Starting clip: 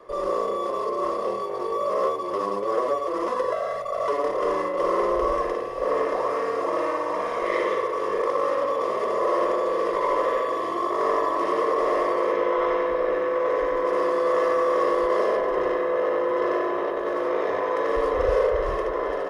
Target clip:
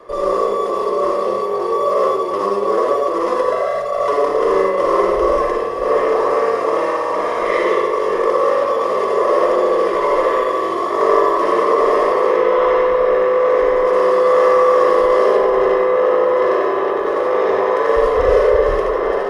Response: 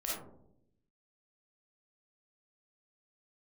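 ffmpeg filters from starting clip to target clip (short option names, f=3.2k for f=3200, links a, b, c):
-filter_complex "[0:a]asplit=2[a][b];[1:a]atrim=start_sample=2205,atrim=end_sample=4410,asetrate=27783,aresample=44100[c];[b][c]afir=irnorm=-1:irlink=0,volume=-5dB[d];[a][d]amix=inputs=2:normalize=0,volume=3dB"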